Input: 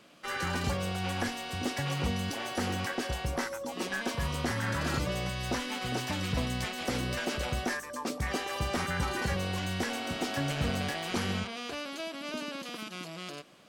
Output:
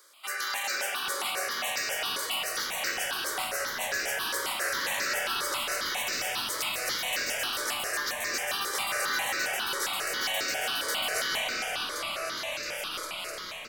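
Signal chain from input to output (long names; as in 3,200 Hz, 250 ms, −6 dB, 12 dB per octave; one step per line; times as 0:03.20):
high-pass filter 370 Hz 24 dB per octave
spectral tilt +4 dB per octave
echo with shifted repeats 458 ms, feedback 46%, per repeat −130 Hz, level −8.5 dB
convolution reverb RT60 3.9 s, pre-delay 115 ms, DRR −2.5 dB
step-sequenced phaser 7.4 Hz 730–3,200 Hz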